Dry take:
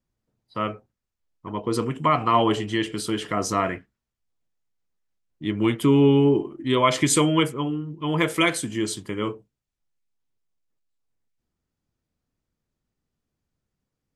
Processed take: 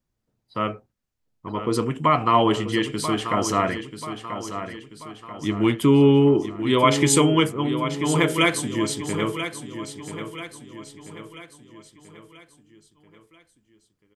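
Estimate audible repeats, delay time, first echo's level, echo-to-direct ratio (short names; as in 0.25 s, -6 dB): 4, 0.986 s, -10.0 dB, -9.0 dB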